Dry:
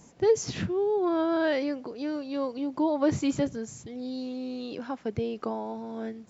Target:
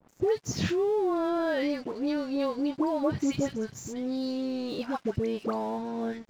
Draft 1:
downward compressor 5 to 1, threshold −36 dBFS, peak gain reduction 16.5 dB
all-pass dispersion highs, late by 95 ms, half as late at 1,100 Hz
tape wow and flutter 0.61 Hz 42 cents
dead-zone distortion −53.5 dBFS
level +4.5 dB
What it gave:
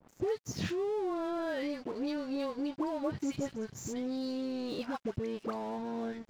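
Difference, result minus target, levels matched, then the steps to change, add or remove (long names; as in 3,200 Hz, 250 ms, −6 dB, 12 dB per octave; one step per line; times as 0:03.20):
downward compressor: peak gain reduction +6.5 dB
change: downward compressor 5 to 1, threshold −28 dBFS, peak gain reduction 10.5 dB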